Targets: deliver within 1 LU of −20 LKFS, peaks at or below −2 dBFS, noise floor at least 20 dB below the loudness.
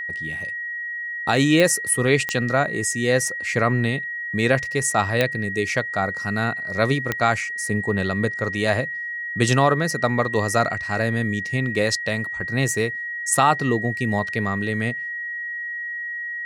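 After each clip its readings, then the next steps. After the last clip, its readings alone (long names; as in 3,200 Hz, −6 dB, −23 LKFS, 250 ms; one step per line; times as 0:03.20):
number of clicks 4; interfering tone 1,900 Hz; level of the tone −27 dBFS; integrated loudness −22.0 LKFS; sample peak −4.5 dBFS; target loudness −20.0 LKFS
→ click removal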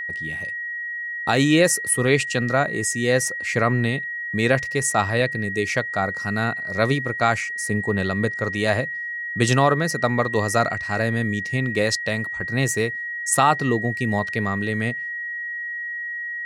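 number of clicks 0; interfering tone 1,900 Hz; level of the tone −27 dBFS
→ notch filter 1,900 Hz, Q 30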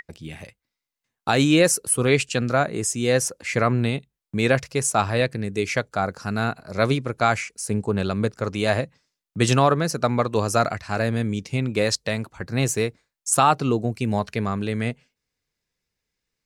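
interfering tone none found; integrated loudness −23.0 LKFS; sample peak −5.5 dBFS; target loudness −20.0 LKFS
→ level +3 dB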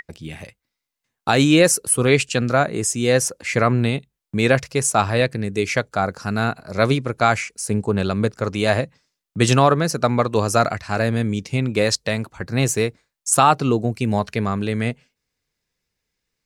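integrated loudness −20.0 LKFS; sample peak −2.5 dBFS; background noise floor −82 dBFS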